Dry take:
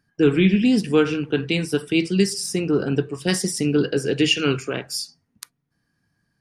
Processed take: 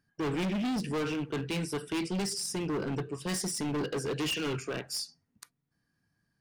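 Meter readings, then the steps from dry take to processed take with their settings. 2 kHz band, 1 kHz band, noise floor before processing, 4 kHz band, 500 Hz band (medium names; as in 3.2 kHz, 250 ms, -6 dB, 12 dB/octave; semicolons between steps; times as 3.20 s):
-11.5 dB, -4.5 dB, -73 dBFS, -11.0 dB, -13.0 dB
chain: hard clipper -22.5 dBFS, distortion -5 dB; trim -6.5 dB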